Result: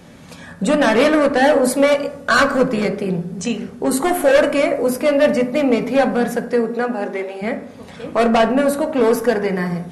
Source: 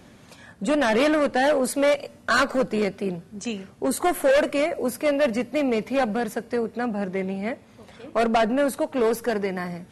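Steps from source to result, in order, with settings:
camcorder AGC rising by 7 dB per second
0:06.47–0:07.41: high-pass filter 130 Hz → 460 Hz 24 dB per octave
convolution reverb RT60 0.80 s, pre-delay 3 ms, DRR 5 dB
level +5 dB

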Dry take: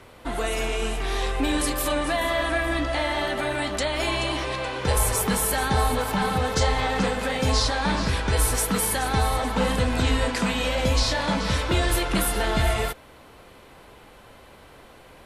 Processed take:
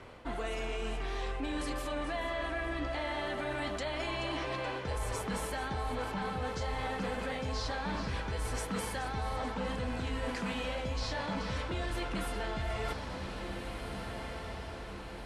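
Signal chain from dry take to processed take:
in parallel at 0 dB: brickwall limiter −17 dBFS, peak gain reduction 7 dB
on the sum: low-pass filter 9,100 Hz 12 dB per octave
high-shelf EQ 6,000 Hz −9 dB
notch filter 3,700 Hz, Q 24
feedback delay with all-pass diffusion 1,706 ms, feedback 50%, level −14 dB
reversed playback
downward compressor 5 to 1, threshold −25 dBFS, peak gain reduction 10.5 dB
reversed playback
level −8 dB

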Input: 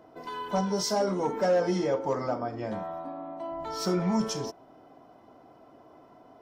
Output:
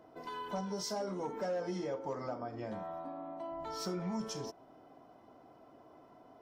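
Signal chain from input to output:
downward compressor 2 to 1, threshold −35 dBFS, peak gain reduction 8 dB
level −4.5 dB

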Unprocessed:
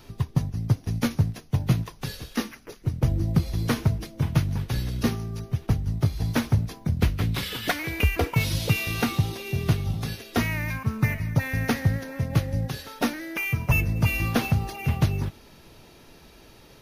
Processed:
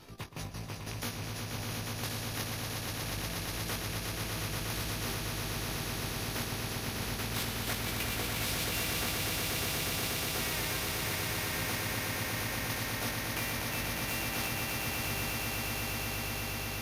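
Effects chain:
loose part that buzzes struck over −21 dBFS, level −27 dBFS
output level in coarse steps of 15 dB
chorus effect 0.25 Hz, delay 18.5 ms, depth 3.4 ms
harmonic generator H 4 −37 dB, 8 −38 dB, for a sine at −21.5 dBFS
echo that builds up and dies away 120 ms, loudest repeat 8, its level −6.5 dB
every bin compressed towards the loudest bin 2 to 1
level −2.5 dB

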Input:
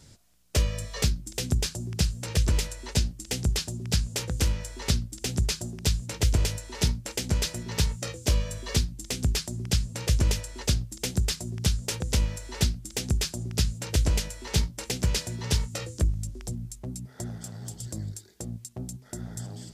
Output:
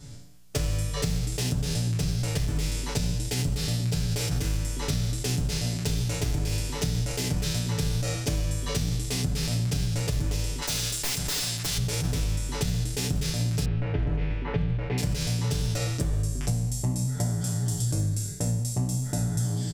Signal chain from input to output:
peak hold with a decay on every bin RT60 0.85 s
brickwall limiter −19.5 dBFS, peak gain reduction 11 dB
0:10.62–0:11.78: tilt shelving filter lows −9 dB, about 630 Hz
0:13.65–0:14.98: low-pass filter 2,400 Hz 24 dB per octave
wave folding −22 dBFS
speech leveller within 3 dB 0.5 s
low-shelf EQ 240 Hz +9 dB
comb filter 6.9 ms, depth 76%
downward compressor, threshold −23 dBFS, peak gain reduction 8.5 dB

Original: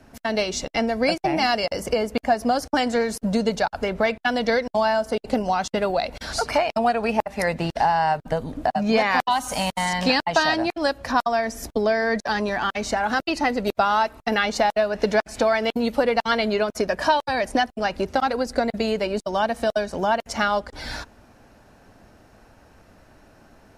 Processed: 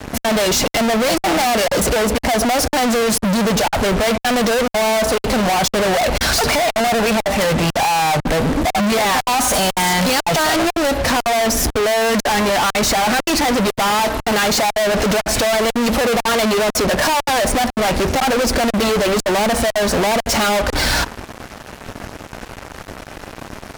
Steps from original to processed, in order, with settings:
dynamic equaliser 680 Hz, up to +4 dB, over −29 dBFS, Q 1
fuzz pedal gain 43 dB, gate −50 dBFS
level −2 dB

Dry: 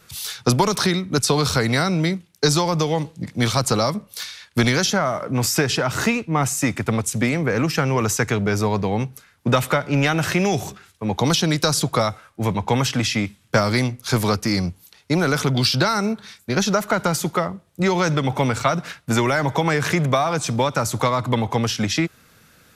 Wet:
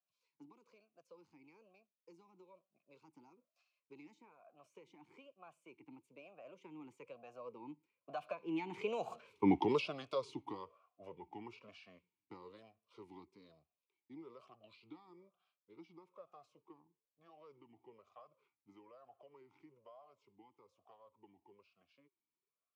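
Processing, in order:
source passing by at 0:09.40, 50 m/s, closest 3.9 metres
formant filter swept between two vowels a-u 1.1 Hz
level +10 dB

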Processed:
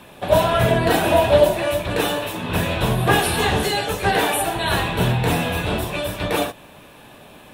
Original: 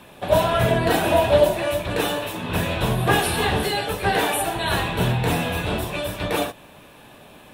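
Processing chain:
0:03.39–0:04.11: parametric band 6,600 Hz +8 dB 0.39 octaves
level +2 dB

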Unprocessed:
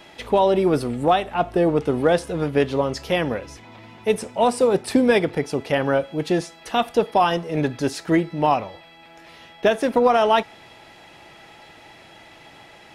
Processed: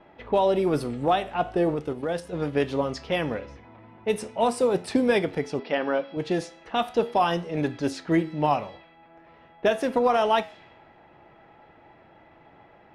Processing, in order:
low-pass that shuts in the quiet parts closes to 1,200 Hz, open at −17 dBFS
0:01.74–0:02.33: output level in coarse steps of 11 dB
flanger 0.39 Hz, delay 9.9 ms, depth 6 ms, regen +82%
0:05.59–0:06.17: linear-phase brick-wall band-pass 160–5,800 Hz

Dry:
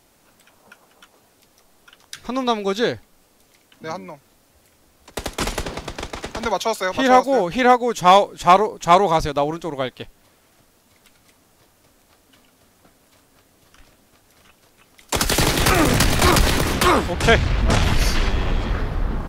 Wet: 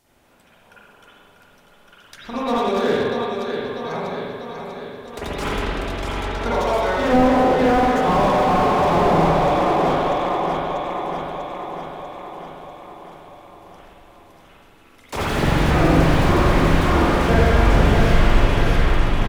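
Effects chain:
repeating echo 643 ms, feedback 60%, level −7 dB
spring reverb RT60 1.7 s, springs 43/55 ms, chirp 80 ms, DRR −9 dB
slew-rate limiting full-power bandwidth 290 Hz
level −7 dB

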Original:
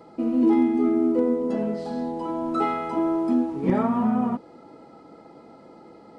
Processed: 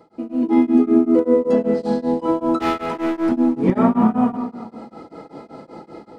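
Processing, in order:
automatic gain control gain up to 13 dB
0:02.60–0:03.32: hard clipping −16.5 dBFS, distortion −15 dB
convolution reverb RT60 1.4 s, pre-delay 76 ms, DRR 8.5 dB
tremolo along a rectified sine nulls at 5.2 Hz
level −1.5 dB

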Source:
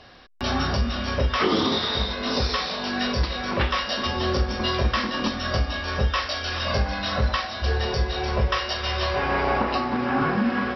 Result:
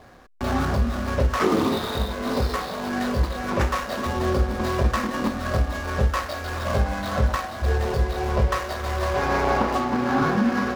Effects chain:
running median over 15 samples
level +2 dB

